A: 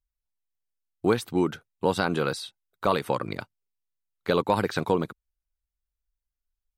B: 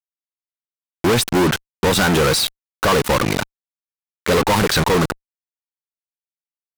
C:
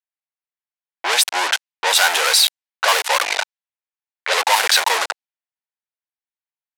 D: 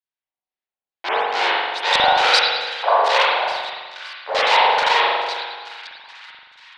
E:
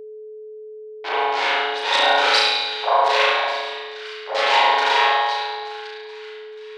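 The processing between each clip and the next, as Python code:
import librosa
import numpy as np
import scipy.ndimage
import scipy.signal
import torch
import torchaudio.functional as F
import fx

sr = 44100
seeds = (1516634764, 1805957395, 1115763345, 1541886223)

y1 = fx.fuzz(x, sr, gain_db=47.0, gate_db=-39.0)
y2 = scipy.signal.sosfilt(scipy.signal.butter(4, 740.0, 'highpass', fs=sr, output='sos'), y1)
y2 = fx.env_lowpass(y2, sr, base_hz=2100.0, full_db=-16.0)
y2 = fx.peak_eq(y2, sr, hz=1200.0, db=-7.0, octaves=0.5)
y2 = y2 * librosa.db_to_amplitude(5.5)
y3 = fx.echo_split(y2, sr, split_hz=1300.0, low_ms=147, high_ms=570, feedback_pct=52, wet_db=-15.0)
y3 = fx.filter_lfo_lowpass(y3, sr, shape='square', hz=2.3, low_hz=810.0, high_hz=4200.0, q=2.1)
y3 = fx.rev_spring(y3, sr, rt60_s=1.3, pass_ms=(42,), chirp_ms=70, drr_db=-7.5)
y3 = y3 * librosa.db_to_amplitude(-6.5)
y4 = fx.room_flutter(y3, sr, wall_m=6.0, rt60_s=0.77)
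y4 = y4 + 10.0 ** (-30.0 / 20.0) * np.sin(2.0 * np.pi * 430.0 * np.arange(len(y4)) / sr)
y4 = fx.brickwall_highpass(y4, sr, low_hz=240.0)
y4 = y4 * librosa.db_to_amplitude(-4.0)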